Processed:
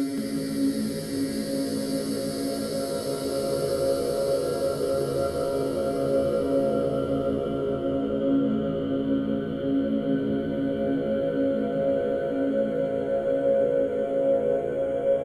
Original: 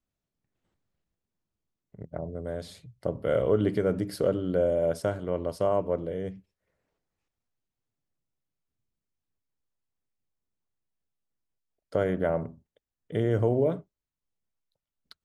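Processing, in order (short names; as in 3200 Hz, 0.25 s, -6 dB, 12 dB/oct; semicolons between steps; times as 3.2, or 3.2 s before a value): low shelf 170 Hz -10 dB; in parallel at -1 dB: negative-ratio compressor -29 dBFS; on the sum: robotiser 137 Hz; chorus voices 4, 0.32 Hz, delay 15 ms, depth 3.9 ms; Paulstretch 22×, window 0.50 s, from 4.04; on a send: frequency-shifting echo 0.176 s, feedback 37%, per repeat -57 Hz, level -5.5 dB; on the sum: gain +2 dB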